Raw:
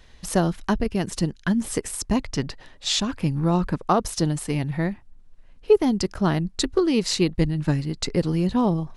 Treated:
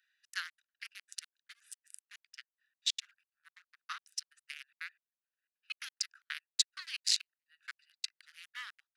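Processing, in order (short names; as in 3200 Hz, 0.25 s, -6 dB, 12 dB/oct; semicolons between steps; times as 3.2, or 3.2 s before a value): Wiener smoothing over 41 samples; steep high-pass 1500 Hz 48 dB/oct; step gate "xxx.xx.x." 181 bpm -60 dB; 1.74–4.32 upward expander 1.5:1, over -49 dBFS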